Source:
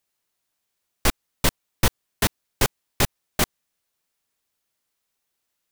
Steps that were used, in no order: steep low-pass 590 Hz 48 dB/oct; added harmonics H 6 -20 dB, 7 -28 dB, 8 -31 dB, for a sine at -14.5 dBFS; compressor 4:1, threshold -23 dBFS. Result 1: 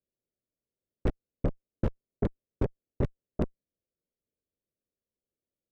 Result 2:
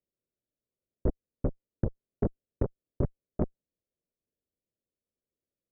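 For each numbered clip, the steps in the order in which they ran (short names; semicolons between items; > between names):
steep low-pass > added harmonics > compressor; steep low-pass > compressor > added harmonics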